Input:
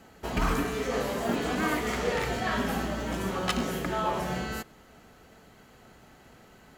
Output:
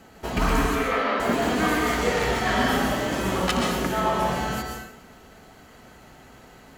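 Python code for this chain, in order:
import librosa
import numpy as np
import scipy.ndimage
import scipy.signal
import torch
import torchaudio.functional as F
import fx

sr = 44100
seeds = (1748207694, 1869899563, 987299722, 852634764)

y = fx.cabinet(x, sr, low_hz=230.0, low_slope=24, high_hz=4000.0, hz=(370.0, 1300.0, 2200.0), db=(-8, 9, 6), at=(0.75, 1.2))
y = fx.doubler(y, sr, ms=43.0, db=-3.5, at=(2.4, 3.47))
y = fx.rev_plate(y, sr, seeds[0], rt60_s=0.69, hf_ratio=0.95, predelay_ms=110, drr_db=1.0)
y = y * librosa.db_to_amplitude(3.5)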